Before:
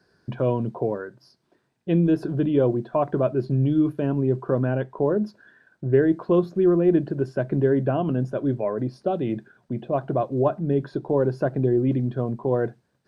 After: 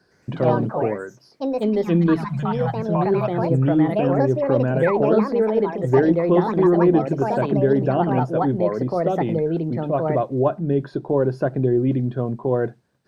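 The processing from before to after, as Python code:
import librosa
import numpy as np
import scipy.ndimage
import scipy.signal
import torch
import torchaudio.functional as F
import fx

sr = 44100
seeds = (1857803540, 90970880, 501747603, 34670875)

y = fx.cheby1_bandstop(x, sr, low_hz=170.0, high_hz=700.0, order=3, at=(2.24, 3.44))
y = fx.echo_pitch(y, sr, ms=112, semitones=4, count=2, db_per_echo=-3.0)
y = fx.spec_paint(y, sr, seeds[0], shape='fall', start_s=4.83, length_s=0.31, low_hz=240.0, high_hz=2000.0, level_db=-29.0)
y = y * 10.0 ** (2.0 / 20.0)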